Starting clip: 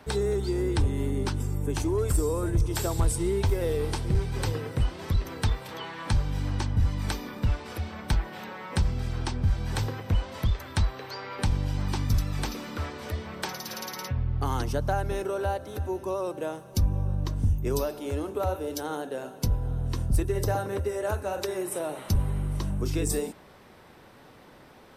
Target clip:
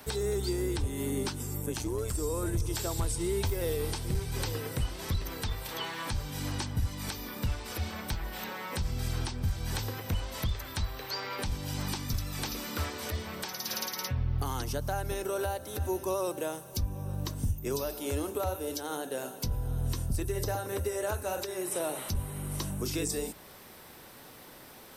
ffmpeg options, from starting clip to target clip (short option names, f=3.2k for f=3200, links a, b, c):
-filter_complex "[0:a]acrossover=split=6200[a][b];[b]acompressor=threshold=-52dB:ratio=4:attack=1:release=60[c];[a][c]amix=inputs=2:normalize=0,aemphasis=mode=production:type=75fm,bandreject=f=50:t=h:w=6,bandreject=f=100:t=h:w=6,bandreject=f=150:t=h:w=6,bandreject=f=200:t=h:w=6,alimiter=limit=-21.5dB:level=0:latency=1:release=362,asettb=1/sr,asplit=3[d][e][f];[d]atrim=end=1.614[g];[e]atrim=start=1.61:end=2.15,asetpts=PTS-STARTPTS,afade=t=in:d=0.004:c=qsin,afade=t=out:st=0.536:d=0.004:c=qsin,tremolo=f=120:d=0.519[h];[f]atrim=start=2.146[i];[g][h]acrossfade=d=0.004:c1=hsin:c2=qsin[j];[j][i]acrossfade=d=0.004:c1=qsin:c2=hsin"